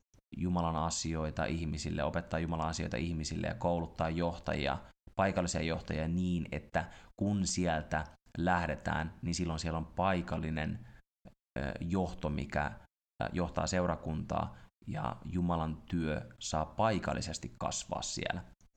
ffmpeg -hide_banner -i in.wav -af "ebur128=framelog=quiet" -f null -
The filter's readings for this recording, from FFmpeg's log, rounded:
Integrated loudness:
  I:         -35.6 LUFS
  Threshold: -45.8 LUFS
Loudness range:
  LRA:         2.2 LU
  Threshold: -55.8 LUFS
  LRA low:   -37.0 LUFS
  LRA high:  -34.7 LUFS